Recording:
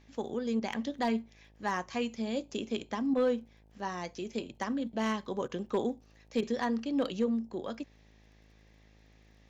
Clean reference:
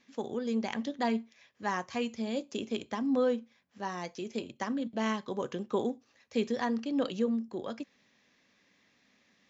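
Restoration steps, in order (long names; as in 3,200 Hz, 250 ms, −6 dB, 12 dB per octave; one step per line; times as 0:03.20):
clipped peaks rebuilt −21 dBFS
click removal
hum removal 53.3 Hz, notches 17
repair the gap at 0:00.60/0:03.14/0:05.48/0:06.41, 13 ms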